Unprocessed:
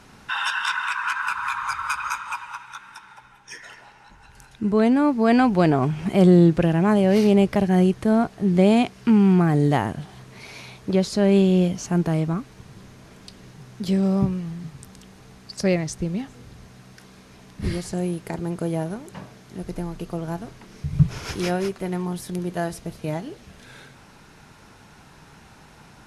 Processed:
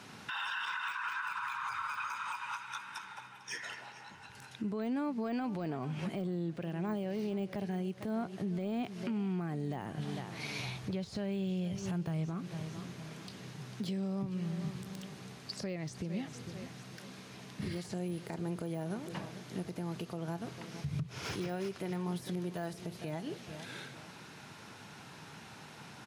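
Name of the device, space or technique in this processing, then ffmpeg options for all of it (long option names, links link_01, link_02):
broadcast voice chain: -filter_complex "[0:a]asplit=3[link_01][link_02][link_03];[link_01]afade=type=out:start_time=10.57:duration=0.02[link_04];[link_02]asubboost=boost=8:cutoff=90,afade=type=in:start_time=10.57:duration=0.02,afade=type=out:start_time=12.25:duration=0.02[link_05];[link_03]afade=type=in:start_time=12.25:duration=0.02[link_06];[link_04][link_05][link_06]amix=inputs=3:normalize=0,highpass=frequency=98:width=0.5412,highpass=frequency=98:width=1.3066,aecho=1:1:449|898|1347:0.112|0.0415|0.0154,deesser=0.95,acompressor=threshold=-28dB:ratio=3,equalizer=frequency=3300:width_type=o:width=1.5:gain=4,alimiter=level_in=2dB:limit=-24dB:level=0:latency=1:release=191,volume=-2dB,volume=-2.5dB"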